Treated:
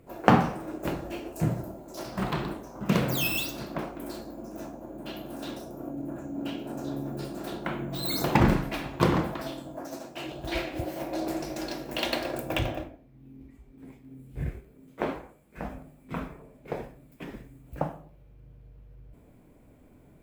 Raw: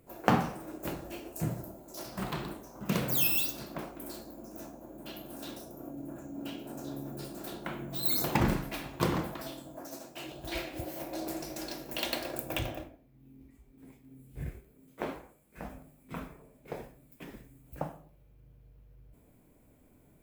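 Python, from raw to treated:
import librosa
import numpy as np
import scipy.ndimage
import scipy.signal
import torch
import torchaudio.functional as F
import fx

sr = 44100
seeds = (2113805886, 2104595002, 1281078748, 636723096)

y = fx.lowpass(x, sr, hz=3500.0, slope=6)
y = y * librosa.db_to_amplitude(6.5)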